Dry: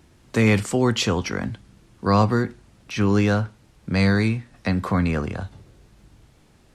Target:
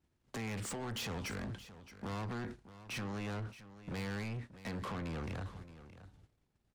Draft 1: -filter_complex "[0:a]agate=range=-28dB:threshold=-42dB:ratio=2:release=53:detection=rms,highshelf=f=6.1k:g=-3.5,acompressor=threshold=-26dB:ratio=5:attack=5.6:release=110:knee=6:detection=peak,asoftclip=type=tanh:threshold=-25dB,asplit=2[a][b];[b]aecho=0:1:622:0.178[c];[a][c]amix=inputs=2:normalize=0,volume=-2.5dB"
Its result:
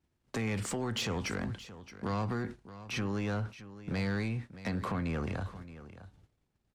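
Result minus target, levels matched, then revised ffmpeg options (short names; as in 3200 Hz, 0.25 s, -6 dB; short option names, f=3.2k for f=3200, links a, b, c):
soft clip: distortion -9 dB
-filter_complex "[0:a]agate=range=-28dB:threshold=-42dB:ratio=2:release=53:detection=rms,highshelf=f=6.1k:g=-3.5,acompressor=threshold=-26dB:ratio=5:attack=5.6:release=110:knee=6:detection=peak,asoftclip=type=tanh:threshold=-35.5dB,asplit=2[a][b];[b]aecho=0:1:622:0.178[c];[a][c]amix=inputs=2:normalize=0,volume=-2.5dB"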